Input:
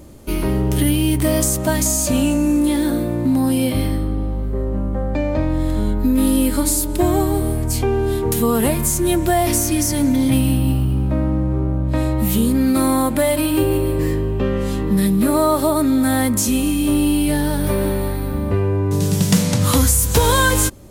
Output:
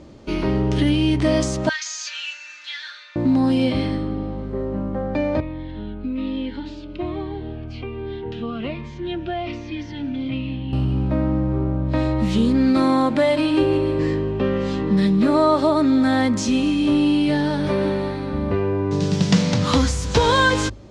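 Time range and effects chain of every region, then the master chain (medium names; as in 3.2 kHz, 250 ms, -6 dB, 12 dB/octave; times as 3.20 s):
1.69–3.16 s: elliptic band-pass 1.5–6.3 kHz, stop band 70 dB + comb 6.4 ms, depth 60%
5.40–10.73 s: four-pole ladder low-pass 3.5 kHz, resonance 45% + Shepard-style phaser falling 1.2 Hz
whole clip: low-pass 5.5 kHz 24 dB/octave; bass shelf 61 Hz -10 dB; hum notches 50/100 Hz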